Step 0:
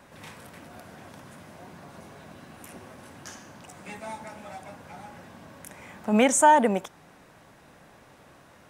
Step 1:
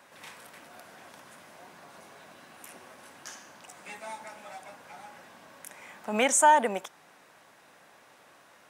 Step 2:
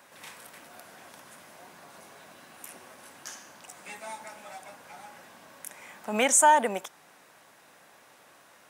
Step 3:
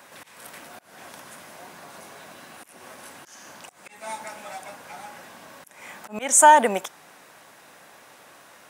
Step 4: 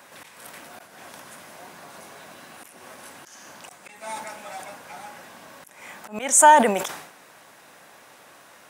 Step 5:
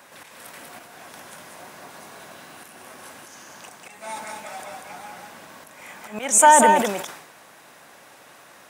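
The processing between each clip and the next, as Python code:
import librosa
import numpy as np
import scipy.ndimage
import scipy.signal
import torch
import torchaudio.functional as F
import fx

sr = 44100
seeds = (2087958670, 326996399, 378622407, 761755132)

y1 = fx.highpass(x, sr, hz=740.0, slope=6)
y2 = fx.high_shelf(y1, sr, hz=7300.0, db=6.5)
y3 = fx.auto_swell(y2, sr, attack_ms=234.0)
y3 = y3 * 10.0 ** (6.5 / 20.0)
y4 = fx.sustainer(y3, sr, db_per_s=75.0)
y5 = y4 + 10.0 ** (-4.0 / 20.0) * np.pad(y4, (int(192 * sr / 1000.0), 0))[:len(y4)]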